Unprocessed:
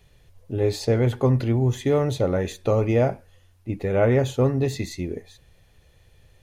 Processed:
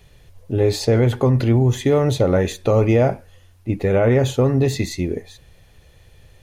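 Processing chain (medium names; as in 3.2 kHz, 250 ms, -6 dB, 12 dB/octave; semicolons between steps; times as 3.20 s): loudness maximiser +13.5 dB; trim -7 dB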